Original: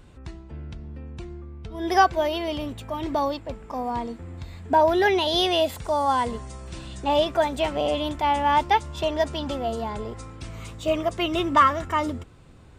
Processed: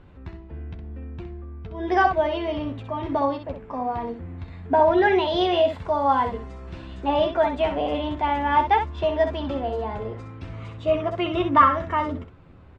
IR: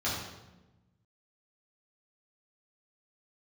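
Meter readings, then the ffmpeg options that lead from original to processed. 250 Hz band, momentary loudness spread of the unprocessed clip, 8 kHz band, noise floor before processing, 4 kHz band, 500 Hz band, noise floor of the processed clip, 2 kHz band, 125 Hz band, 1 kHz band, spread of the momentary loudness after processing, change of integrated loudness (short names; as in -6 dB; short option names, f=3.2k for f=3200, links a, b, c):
+1.5 dB, 19 LU, under -15 dB, -48 dBFS, -5.5 dB, +1.5 dB, -46 dBFS, +0.5 dB, +2.0 dB, +0.5 dB, 19 LU, +1.0 dB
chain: -af "lowpass=2.4k,aecho=1:1:11|64:0.473|0.422"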